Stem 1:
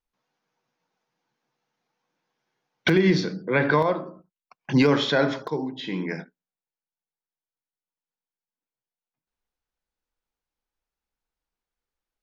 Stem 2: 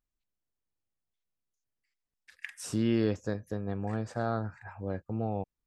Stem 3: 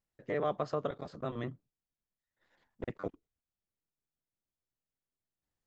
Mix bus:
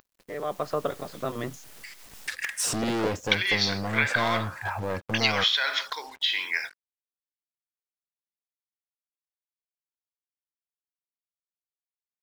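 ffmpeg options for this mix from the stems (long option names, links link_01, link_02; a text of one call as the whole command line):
ffmpeg -i stem1.wav -i stem2.wav -i stem3.wav -filter_complex "[0:a]highpass=1100,equalizer=frequency=3400:width_type=o:width=2.7:gain=14.5,acompressor=threshold=-21dB:ratio=6,adelay=450,volume=-11.5dB[link_01];[1:a]acompressor=mode=upward:threshold=-32dB:ratio=2.5,volume=35dB,asoftclip=hard,volume=-35dB,volume=1dB[link_02];[2:a]volume=-3dB[link_03];[link_01][link_02][link_03]amix=inputs=3:normalize=0,lowshelf=frequency=260:gain=-7.5,dynaudnorm=framelen=160:gausssize=7:maxgain=11.5dB,acrusher=bits=7:mix=0:aa=0.5" out.wav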